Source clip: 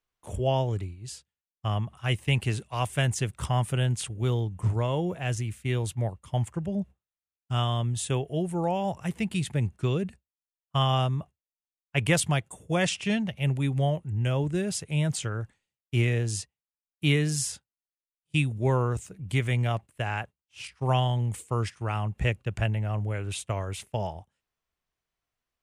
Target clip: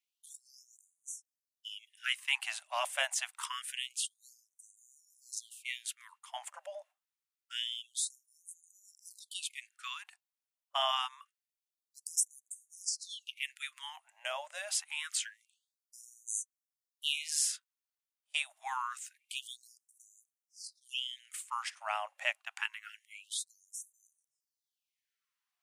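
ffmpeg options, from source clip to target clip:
-af "afftfilt=real='re*lt(hypot(re,im),0.251)':imag='im*lt(hypot(re,im),0.251)':win_size=1024:overlap=0.75,asubboost=boost=4:cutoff=220,afftfilt=real='re*gte(b*sr/1024,530*pow(6000/530,0.5+0.5*sin(2*PI*0.26*pts/sr)))':imag='im*gte(b*sr/1024,530*pow(6000/530,0.5+0.5*sin(2*PI*0.26*pts/sr)))':win_size=1024:overlap=0.75"

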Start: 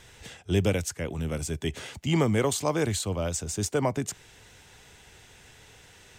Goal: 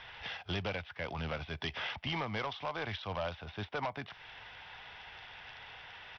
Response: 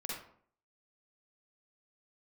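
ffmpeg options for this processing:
-af "lowshelf=f=550:t=q:w=1.5:g=-11.5,acompressor=threshold=-37dB:ratio=4,aresample=8000,asoftclip=type=hard:threshold=-35.5dB,aresample=44100,volume=5dB" -ar 44100 -c:a sbc -b:a 64k

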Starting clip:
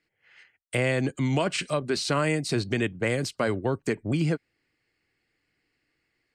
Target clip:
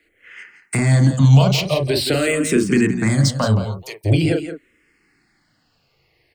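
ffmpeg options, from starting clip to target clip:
-filter_complex "[0:a]asettb=1/sr,asplit=3[a][b][c];[a]atrim=end=3.614[d];[b]atrim=start=3.61:end=4.04,asetpts=PTS-STARTPTS,afade=t=in:d=0.004:c=qsin,afade=t=out:st=0.426:d=0.004:c=qsin,aderivative[e];[c]atrim=start=4.036[f];[d][e]acrossfade=d=0.004:c1=hsin:c2=qsin[g];[g][f]acrossfade=d=0.004:c1=qsin:c2=hsin,acrossover=split=220|3000[h][i][j];[i]acompressor=threshold=-37dB:ratio=3[k];[h][k][j]amix=inputs=3:normalize=0,acrossover=split=1500[l][m];[l]asplit=2[n][o];[o]adelay=37,volume=-2dB[p];[n][p]amix=inputs=2:normalize=0[q];[m]asoftclip=type=tanh:threshold=-30dB[r];[q][r]amix=inputs=2:normalize=0,aecho=1:1:172:0.299,alimiter=level_in=16dB:limit=-1dB:release=50:level=0:latency=1,asplit=2[s][t];[t]afreqshift=-0.45[u];[s][u]amix=inputs=2:normalize=1"

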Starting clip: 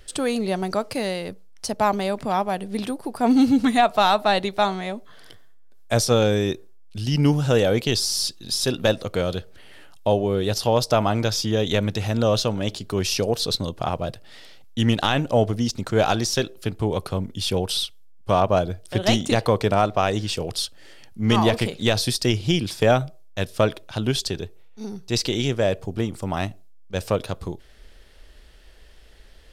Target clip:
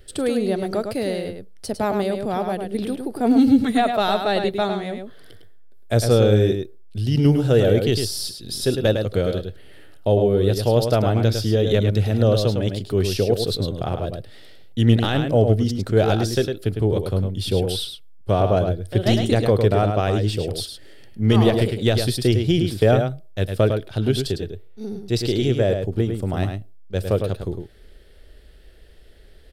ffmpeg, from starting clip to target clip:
-filter_complex "[0:a]equalizer=f=100:t=o:w=0.67:g=6,equalizer=f=400:t=o:w=0.67:g=5,equalizer=f=1k:t=o:w=0.67:g=-9,equalizer=f=2.5k:t=o:w=0.67:g=-4,equalizer=f=6.3k:t=o:w=0.67:g=-9,asplit=2[a][b];[b]adelay=105,volume=-6dB,highshelf=f=4k:g=-2.36[c];[a][c]amix=inputs=2:normalize=0"

